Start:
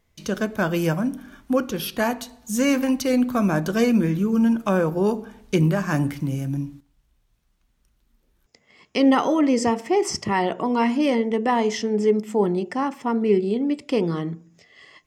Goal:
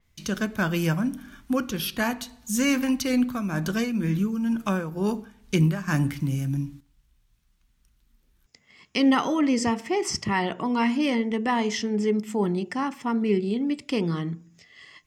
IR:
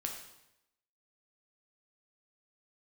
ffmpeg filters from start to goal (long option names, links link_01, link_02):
-filter_complex "[0:a]equalizer=frequency=540:width=0.74:gain=-9,asettb=1/sr,asplit=3[link_01][link_02][link_03];[link_01]atrim=end=3.214[link_04];[link_02]atrim=start=3.21:end=5.88,asetpts=PTS-STARTPTS,afade=type=in:duration=0.004:curve=qsin,afade=type=out:start_time=2.666:duration=0.004:curve=qsin,tremolo=f=2.1:d=0.58[link_05];[link_03]atrim=start=5.876[link_06];[link_04][link_05]acrossfade=duration=0.004:curve1=hsin:curve2=qsin[link_07];[link_07][link_06]acrossfade=duration=0.004:curve1=qsin:curve2=hsin,adynamicequalizer=threshold=0.00562:dfrequency=5100:dqfactor=0.7:tfrequency=5100:tqfactor=0.7:attack=5:release=100:ratio=0.375:range=2:mode=cutabove:tftype=highshelf,volume=1.5dB"